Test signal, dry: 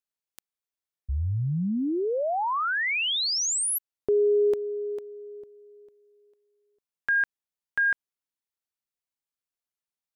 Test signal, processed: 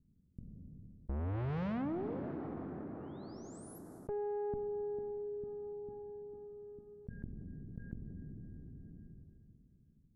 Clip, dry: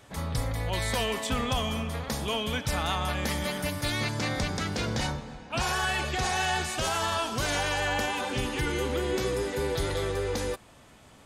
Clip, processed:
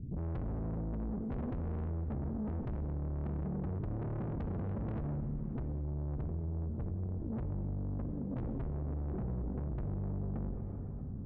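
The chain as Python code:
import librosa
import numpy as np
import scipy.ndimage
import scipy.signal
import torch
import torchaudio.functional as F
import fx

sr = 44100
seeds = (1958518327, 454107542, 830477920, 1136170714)

y = scipy.signal.sosfilt(scipy.signal.cheby2(4, 70, 950.0, 'lowpass', fs=sr, output='sos'), x)
y = fx.tube_stage(y, sr, drive_db=45.0, bias=0.75)
y = fx.rev_plate(y, sr, seeds[0], rt60_s=2.7, hf_ratio=0.65, predelay_ms=0, drr_db=9.0)
y = fx.env_flatten(y, sr, amount_pct=70)
y = F.gain(torch.from_numpy(y), 7.5).numpy()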